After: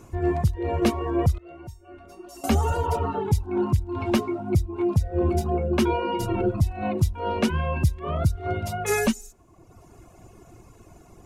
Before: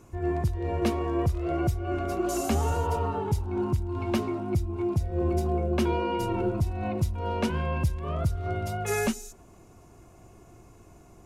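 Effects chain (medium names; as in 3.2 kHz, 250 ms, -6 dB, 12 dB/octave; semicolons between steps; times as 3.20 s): reverb removal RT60 1 s; 1.38–2.44 s: feedback comb 920 Hz, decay 0.32 s, mix 90%; trim +5.5 dB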